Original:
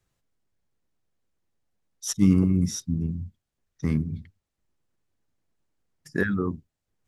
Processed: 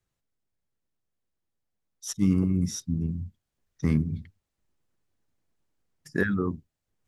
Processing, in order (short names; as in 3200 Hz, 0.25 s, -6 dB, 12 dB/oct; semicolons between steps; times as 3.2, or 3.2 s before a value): vocal rider 2 s; gain -1.5 dB